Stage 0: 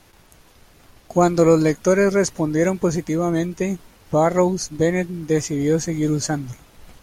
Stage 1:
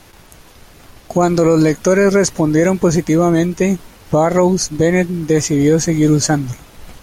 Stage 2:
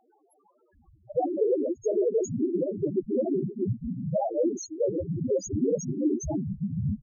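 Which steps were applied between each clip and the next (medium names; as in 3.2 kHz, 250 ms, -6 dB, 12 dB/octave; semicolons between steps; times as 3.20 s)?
peak limiter -13 dBFS, peak gain reduction 8.5 dB; trim +8.5 dB
bands offset in time highs, lows 740 ms, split 210 Hz; whisper effect; loudest bins only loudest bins 2; trim -4.5 dB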